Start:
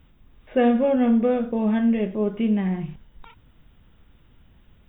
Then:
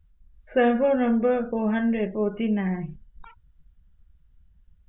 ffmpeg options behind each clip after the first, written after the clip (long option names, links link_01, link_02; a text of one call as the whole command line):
ffmpeg -i in.wav -af "equalizer=frequency=100:width_type=o:width=0.67:gain=-6,equalizer=frequency=250:width_type=o:width=0.67:gain=-4,equalizer=frequency=1600:width_type=o:width=0.67:gain=5,afftdn=noise_reduction=22:noise_floor=-44" out.wav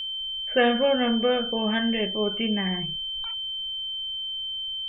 ffmpeg -i in.wav -af "crystalizer=i=4.5:c=0,aeval=exprs='val(0)+0.0355*sin(2*PI*3100*n/s)':channel_layout=same,lowshelf=frequency=430:gain=-3.5" out.wav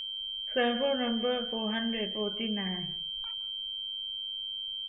ffmpeg -i in.wav -filter_complex "[0:a]aeval=exprs='val(0)+0.0251*sin(2*PI*3200*n/s)':channel_layout=same,asplit=2[link_01][link_02];[link_02]adelay=169.1,volume=-17dB,highshelf=frequency=4000:gain=-3.8[link_03];[link_01][link_03]amix=inputs=2:normalize=0,volume=-7.5dB" out.wav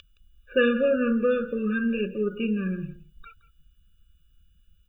ffmpeg -i in.wav -af "afftfilt=real='re*eq(mod(floor(b*sr/1024/580),2),0)':imag='im*eq(mod(floor(b*sr/1024/580),2),0)':win_size=1024:overlap=0.75,volume=8dB" out.wav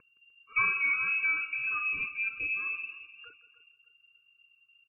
ffmpeg -i in.wav -af "aecho=1:1:301|602|903:0.15|0.0494|0.0163,lowpass=frequency=2400:width_type=q:width=0.5098,lowpass=frequency=2400:width_type=q:width=0.6013,lowpass=frequency=2400:width_type=q:width=0.9,lowpass=frequency=2400:width_type=q:width=2.563,afreqshift=-2800,volume=-6.5dB" out.wav